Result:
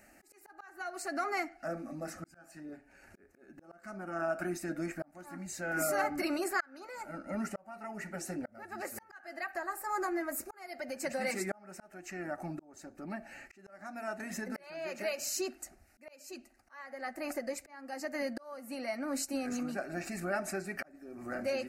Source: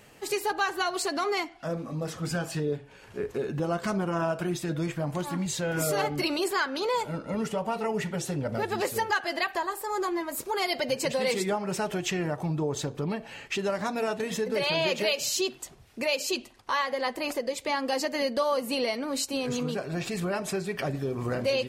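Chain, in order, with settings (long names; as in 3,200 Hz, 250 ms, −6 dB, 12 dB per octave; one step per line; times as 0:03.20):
dynamic equaliser 1,200 Hz, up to +6 dB, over −42 dBFS, Q 1.3
phaser with its sweep stopped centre 680 Hz, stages 8
volume swells 760 ms
level −3 dB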